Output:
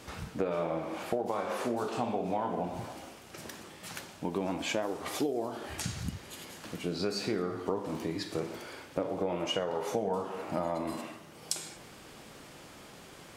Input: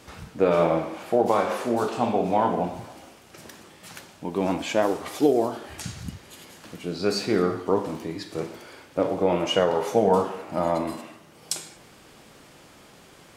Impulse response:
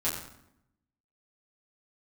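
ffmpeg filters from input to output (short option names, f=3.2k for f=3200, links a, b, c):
-af "acompressor=threshold=-29dB:ratio=6"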